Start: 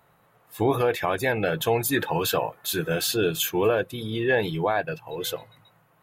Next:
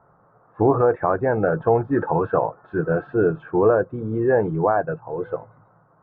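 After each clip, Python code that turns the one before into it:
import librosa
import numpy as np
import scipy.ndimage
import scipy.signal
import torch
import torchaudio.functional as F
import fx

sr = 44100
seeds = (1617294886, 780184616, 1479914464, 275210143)

y = scipy.signal.sosfilt(scipy.signal.cheby1(4, 1.0, 1400.0, 'lowpass', fs=sr, output='sos'), x)
y = y * librosa.db_to_amplitude(5.5)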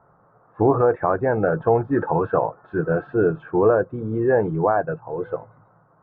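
y = x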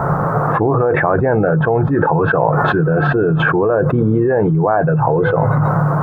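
y = fx.peak_eq(x, sr, hz=150.0, db=12.5, octaves=0.21)
y = fx.env_flatten(y, sr, amount_pct=100)
y = y * librosa.db_to_amplitude(-1.0)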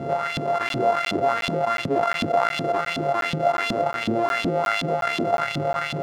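y = np.r_[np.sort(x[:len(x) // 64 * 64].reshape(-1, 64), axis=1).ravel(), x[len(x) // 64 * 64:]]
y = fx.filter_lfo_bandpass(y, sr, shape='saw_up', hz=2.7, low_hz=240.0, high_hz=3600.0, q=2.5)
y = fx.buffer_crackle(y, sr, first_s=0.69, period_s=0.36, block=512, kind='zero')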